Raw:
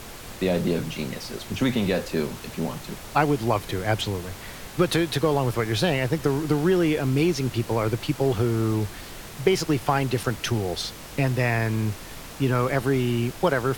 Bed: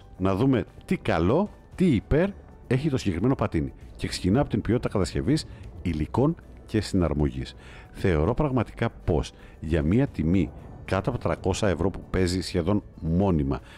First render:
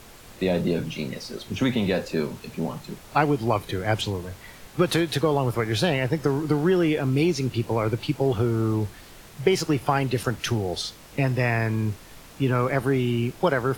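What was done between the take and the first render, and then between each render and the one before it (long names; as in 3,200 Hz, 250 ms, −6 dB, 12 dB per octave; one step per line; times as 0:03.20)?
noise reduction from a noise print 7 dB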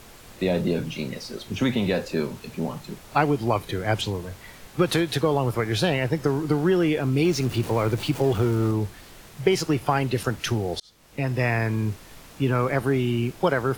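0:07.25–0:08.71: converter with a step at zero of −32.5 dBFS
0:10.80–0:11.43: fade in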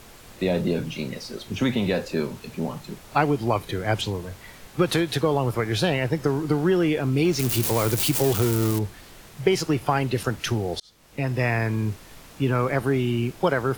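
0:07.39–0:08.79: spike at every zero crossing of −16.5 dBFS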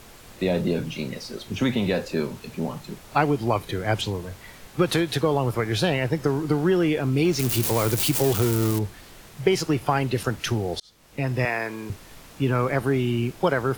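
0:11.45–0:11.90: high-pass filter 350 Hz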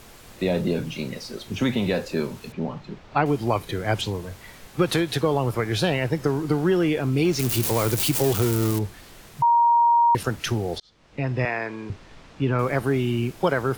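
0:02.52–0:03.26: high-frequency loss of the air 180 metres
0:09.42–0:10.15: beep over 941 Hz −14 dBFS
0:10.78–0:12.59: high-frequency loss of the air 120 metres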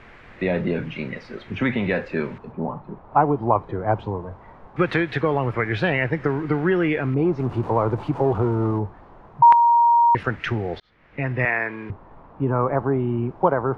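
auto-filter low-pass square 0.21 Hz 970–2,000 Hz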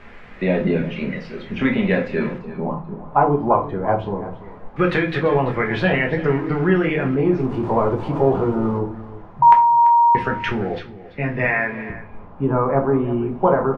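single-tap delay 340 ms −15.5 dB
rectangular room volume 170 cubic metres, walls furnished, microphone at 1.3 metres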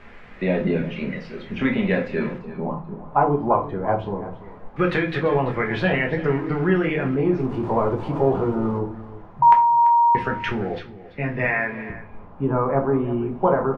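level −2.5 dB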